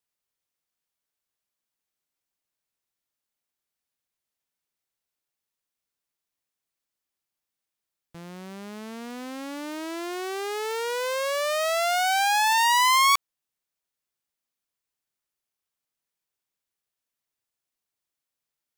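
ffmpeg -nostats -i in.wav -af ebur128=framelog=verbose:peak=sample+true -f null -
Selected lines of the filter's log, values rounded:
Integrated loudness:
  I:         -23.1 LUFS
  Threshold: -34.7 LUFS
Loudness range:
  LRA:        19.5 LU
  Threshold: -46.4 LUFS
  LRA low:   -41.8 LUFS
  LRA high:  -22.3 LUFS
Sample peak:
  Peak:      -13.4 dBFS
True peak:
  Peak:      -12.5 dBFS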